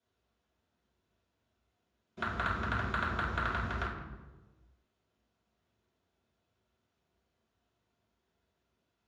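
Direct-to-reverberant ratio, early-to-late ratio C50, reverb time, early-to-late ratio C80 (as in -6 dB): -8.5 dB, 3.5 dB, 1.2 s, 5.5 dB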